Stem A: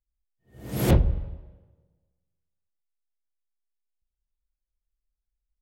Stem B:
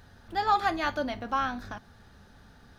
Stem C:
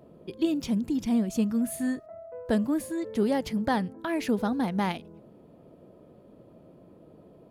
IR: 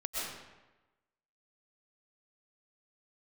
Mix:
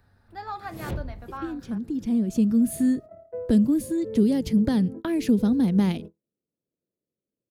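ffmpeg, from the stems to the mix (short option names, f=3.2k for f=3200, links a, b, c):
-filter_complex "[0:a]volume=-12.5dB,asplit=2[a][b];[b]volume=-18dB[c];[1:a]equalizer=f=100:t=o:w=0.33:g=6,equalizer=f=3.15k:t=o:w=0.33:g=-10,equalizer=f=6.3k:t=o:w=0.33:g=-11,volume=-9dB,asplit=2[d][e];[2:a]agate=range=-47dB:threshold=-42dB:ratio=16:detection=peak,lowshelf=f=580:t=q:w=1.5:g=7,adelay=1000,volume=2.5dB[f];[e]apad=whole_len=375188[g];[f][g]sidechaincompress=threshold=-51dB:ratio=6:attack=8.3:release=934[h];[c]aecho=0:1:465:1[i];[a][d][h][i]amix=inputs=4:normalize=0,acrossover=split=250|3000[j][k][l];[k]acompressor=threshold=-29dB:ratio=6[m];[j][m][l]amix=inputs=3:normalize=0"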